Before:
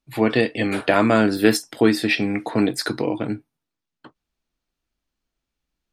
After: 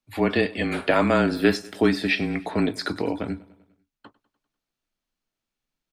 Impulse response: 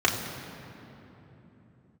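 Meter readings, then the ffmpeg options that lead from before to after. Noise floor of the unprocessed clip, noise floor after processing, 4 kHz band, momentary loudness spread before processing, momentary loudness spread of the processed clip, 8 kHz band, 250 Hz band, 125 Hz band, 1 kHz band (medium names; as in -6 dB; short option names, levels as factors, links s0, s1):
-84 dBFS, under -85 dBFS, -3.5 dB, 8 LU, 8 LU, -10.5 dB, -3.5 dB, -1.5 dB, -2.5 dB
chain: -filter_complex "[0:a]lowshelf=f=190:g=-5,aecho=1:1:99|198|297|396|495:0.0891|0.0517|0.03|0.0174|0.0101,acrossover=split=5400[s0][s1];[s1]acompressor=threshold=0.00631:ratio=4:attack=1:release=60[s2];[s0][s2]amix=inputs=2:normalize=0,afreqshift=-25,volume=0.794"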